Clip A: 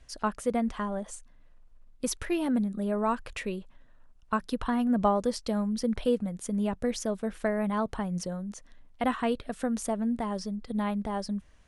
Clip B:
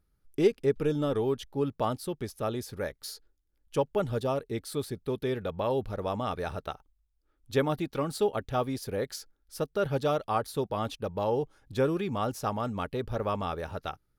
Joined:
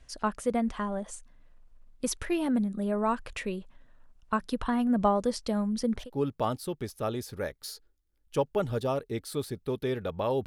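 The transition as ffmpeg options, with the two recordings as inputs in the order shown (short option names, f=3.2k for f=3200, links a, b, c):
-filter_complex "[0:a]apad=whole_dur=10.46,atrim=end=10.46,atrim=end=6.1,asetpts=PTS-STARTPTS[a];[1:a]atrim=start=1.32:end=5.86,asetpts=PTS-STARTPTS[b];[a][b]acrossfade=d=0.18:c1=tri:c2=tri"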